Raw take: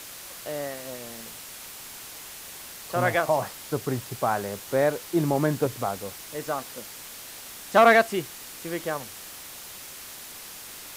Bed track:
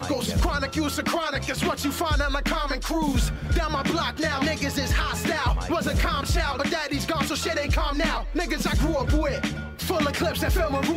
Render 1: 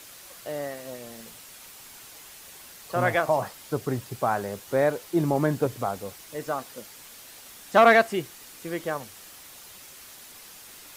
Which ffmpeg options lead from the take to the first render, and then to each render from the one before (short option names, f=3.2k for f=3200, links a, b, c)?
-af "afftdn=nr=6:nf=-42"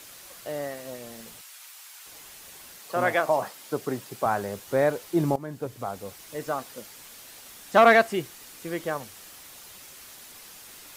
-filter_complex "[0:a]asettb=1/sr,asplit=3[a][b][c];[a]atrim=end=1.414[d];[b]atrim=start=1.41:end=2.06,asetpts=PTS-STARTPTS,afade=t=in:d=0.004:c=qsin,afade=t=out:st=0.646:d=0.004:c=qsin,highpass=990[e];[c]atrim=start=2.056[f];[d][e]acrossfade=d=0.004:c1=hsin:c2=qsin[g];[g][f]acrossfade=d=0.004:c1=qsin:c2=hsin,asettb=1/sr,asplit=3[h][i][j];[h]atrim=end=2.784[k];[i]atrim=start=2.78:end=4.26,asetpts=PTS-STARTPTS,afade=t=in:d=0.004:c=qsin,afade=t=out:st=1.476:d=0.004:c=qsin,highpass=200[l];[j]atrim=start=4.256[m];[k][l]acrossfade=d=0.004:c1=hsin:c2=qsin[n];[n][m]acrossfade=d=0.004:c1=qsin:c2=hsin,asplit=2[o][p];[o]atrim=end=5.36,asetpts=PTS-STARTPTS,afade=t=out:st=5.356:d=0.004:c=hsin:silence=0.125893[q];[p]atrim=start=5.36,asetpts=PTS-STARTPTS,afade=t=in:d=0.91:silence=0.125893[r];[q][r]concat=n=2:v=0:a=1"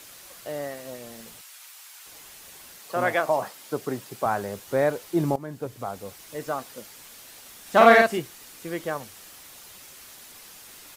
-filter_complex "[0:a]asplit=3[a][b][c];[a]afade=t=out:st=7.65:d=0.02[d];[b]asplit=2[e][f];[f]adelay=48,volume=-2.5dB[g];[e][g]amix=inputs=2:normalize=0,afade=t=in:st=7.65:d=0.02,afade=t=out:st=8.18:d=0.02[h];[c]afade=t=in:st=8.18:d=0.02[i];[d][h][i]amix=inputs=3:normalize=0"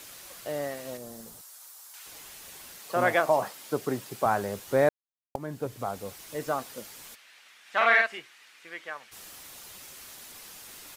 -filter_complex "[0:a]asettb=1/sr,asplit=3[a][b][c];[a]atrim=end=0.974[d];[b]atrim=start=0.97:end=1.94,asetpts=PTS-STARTPTS,afade=t=in:d=0.004:c=qsin,afade=t=out:st=0.966:d=0.004:c=qsin,equalizer=f=2.5k:w=0.96:g=-13[e];[c]atrim=start=1.936[f];[d][e]acrossfade=d=0.004:c1=hsin:c2=qsin[g];[g][f]acrossfade=d=0.004:c1=qsin:c2=hsin,asplit=3[h][i][j];[h]afade=t=out:st=7.14:d=0.02[k];[i]bandpass=f=2.1k:t=q:w=1.4,afade=t=in:st=7.14:d=0.02,afade=t=out:st=9.11:d=0.02[l];[j]afade=t=in:st=9.11:d=0.02[m];[k][l][m]amix=inputs=3:normalize=0,asplit=3[n][o][p];[n]atrim=end=4.89,asetpts=PTS-STARTPTS,afade=t=out:st=4.886:d=0.004:c=hsin[q];[o]atrim=start=4.89:end=5.35,asetpts=PTS-STARTPTS,volume=0[r];[p]atrim=start=5.35,asetpts=PTS-STARTPTS,afade=t=in:d=0.004:c=hsin[s];[q][r][s]concat=n=3:v=0:a=1"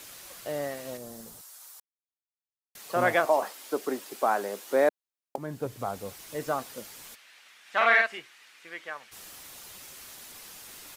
-filter_complex "[0:a]asettb=1/sr,asplit=3[a][b][c];[a]atrim=end=3.254[d];[b]atrim=start=3.25:end=5.38,asetpts=PTS-STARTPTS,afade=t=in:d=0.004:c=qsin,afade=t=out:st=2.126:d=0.004:c=qsin,highpass=f=250:w=0.5412,highpass=f=250:w=1.3066[e];[c]atrim=start=5.376[f];[d][e]acrossfade=d=0.004:c1=hsin:c2=qsin[g];[g][f]acrossfade=d=0.004:c1=qsin:c2=hsin,asplit=3[h][i][j];[h]atrim=end=1.8,asetpts=PTS-STARTPTS,afade=t=out:st=1.796:d=0.004:c=hsin[k];[i]atrim=start=1.8:end=2.75,asetpts=PTS-STARTPTS,volume=0[l];[j]atrim=start=2.75,asetpts=PTS-STARTPTS,afade=t=in:d=0.004:c=hsin[m];[k][l][m]concat=n=3:v=0:a=1"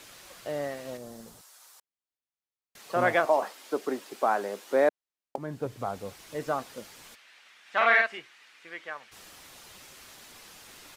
-af "highshelf=f=8.6k:g=-11.5"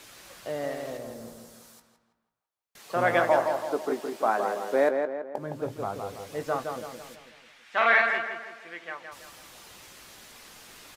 -filter_complex "[0:a]asplit=2[a][b];[b]adelay=18,volume=-11dB[c];[a][c]amix=inputs=2:normalize=0,asplit=2[d][e];[e]adelay=165,lowpass=f=2.4k:p=1,volume=-5dB,asplit=2[f][g];[g]adelay=165,lowpass=f=2.4k:p=1,volume=0.49,asplit=2[h][i];[i]adelay=165,lowpass=f=2.4k:p=1,volume=0.49,asplit=2[j][k];[k]adelay=165,lowpass=f=2.4k:p=1,volume=0.49,asplit=2[l][m];[m]adelay=165,lowpass=f=2.4k:p=1,volume=0.49,asplit=2[n][o];[o]adelay=165,lowpass=f=2.4k:p=1,volume=0.49[p];[d][f][h][j][l][n][p]amix=inputs=7:normalize=0"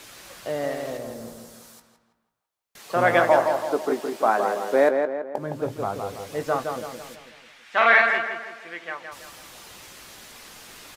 -af "volume=4.5dB"